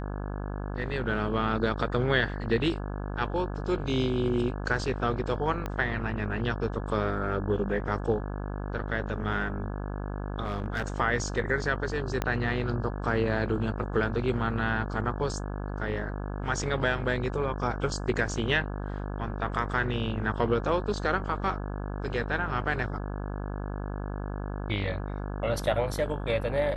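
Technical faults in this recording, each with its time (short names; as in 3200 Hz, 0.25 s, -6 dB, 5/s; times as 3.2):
buzz 50 Hz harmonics 34 -34 dBFS
5.66 pop -19 dBFS
10.43–10.88 clipped -25 dBFS
12.22 pop -13 dBFS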